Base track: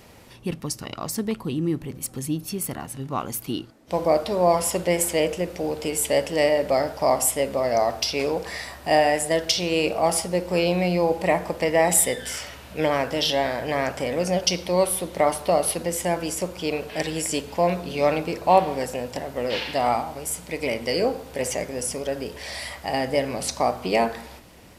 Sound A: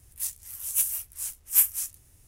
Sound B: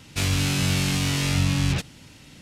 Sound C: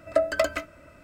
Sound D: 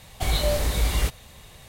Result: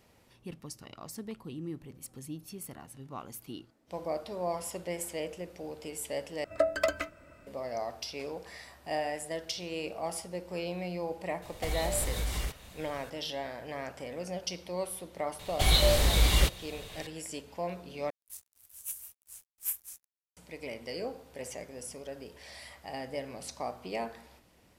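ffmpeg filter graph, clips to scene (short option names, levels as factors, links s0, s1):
-filter_complex "[4:a]asplit=2[s0][s1];[0:a]volume=0.188[s2];[s0]alimiter=limit=0.106:level=0:latency=1:release=195[s3];[s1]equalizer=f=3500:w=1.4:g=5.5[s4];[1:a]aeval=exprs='sgn(val(0))*max(abs(val(0))-0.00794,0)':c=same[s5];[s2]asplit=3[s6][s7][s8];[s6]atrim=end=6.444[s9];[3:a]atrim=end=1.03,asetpts=PTS-STARTPTS,volume=0.596[s10];[s7]atrim=start=7.466:end=18.104[s11];[s5]atrim=end=2.27,asetpts=PTS-STARTPTS,volume=0.211[s12];[s8]atrim=start=20.366[s13];[s3]atrim=end=1.68,asetpts=PTS-STARTPTS,volume=0.596,afade=t=in:d=0.004:c=hsin,afade=t=out:st=1.676:d=0.004:c=hsin,adelay=11420[s14];[s4]atrim=end=1.68,asetpts=PTS-STARTPTS,volume=0.891,afade=t=in:d=0.004:c=hsin,afade=t=out:st=1.676:d=0.004:c=hsin,adelay=15390[s15];[s9][s10]acrossfade=d=0.004:c1=hsin:c2=hsin[s16];[s16][s11]acrossfade=d=0.004:c1=hsin:c2=hsin[s17];[s17][s12]acrossfade=d=0.004:c1=hsin:c2=hsin[s18];[s18][s13]acrossfade=d=0.004:c1=hsin:c2=hsin[s19];[s19][s14][s15]amix=inputs=3:normalize=0"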